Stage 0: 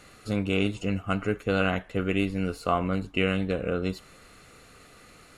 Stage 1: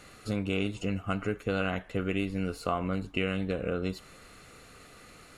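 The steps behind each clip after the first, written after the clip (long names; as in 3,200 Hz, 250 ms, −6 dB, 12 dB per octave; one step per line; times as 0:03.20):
downward compressor 2 to 1, threshold −29 dBFS, peak gain reduction 6 dB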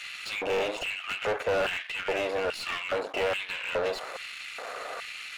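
gain on one half-wave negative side −12 dB
auto-filter high-pass square 1.2 Hz 590–2,600 Hz
mid-hump overdrive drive 29 dB, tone 1,700 Hz, clips at −18.5 dBFS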